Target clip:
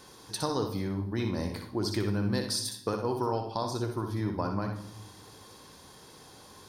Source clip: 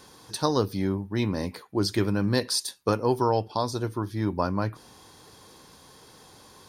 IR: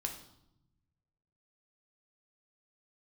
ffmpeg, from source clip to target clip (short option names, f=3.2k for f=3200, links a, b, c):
-filter_complex "[0:a]acompressor=threshold=-28dB:ratio=2.5,asplit=2[a][b];[1:a]atrim=start_sample=2205,adelay=61[c];[b][c]afir=irnorm=-1:irlink=0,volume=-5dB[d];[a][d]amix=inputs=2:normalize=0,volume=-1.5dB"